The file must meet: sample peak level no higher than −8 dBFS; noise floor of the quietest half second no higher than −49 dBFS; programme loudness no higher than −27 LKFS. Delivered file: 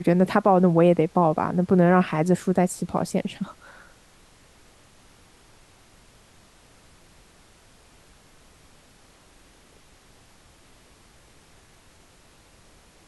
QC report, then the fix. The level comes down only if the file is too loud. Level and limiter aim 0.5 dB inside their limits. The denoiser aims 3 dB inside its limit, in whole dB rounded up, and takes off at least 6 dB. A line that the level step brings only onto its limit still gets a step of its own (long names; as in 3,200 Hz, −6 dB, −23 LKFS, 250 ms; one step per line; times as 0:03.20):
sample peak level −6.0 dBFS: out of spec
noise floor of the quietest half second −54 dBFS: in spec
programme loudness −21.5 LKFS: out of spec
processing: level −6 dB